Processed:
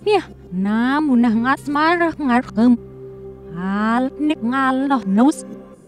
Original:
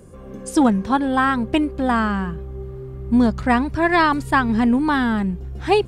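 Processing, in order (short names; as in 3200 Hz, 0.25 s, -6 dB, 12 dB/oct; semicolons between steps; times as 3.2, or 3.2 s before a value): whole clip reversed; resonant low shelf 130 Hz -12 dB, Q 1.5; ending taper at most 520 dB/s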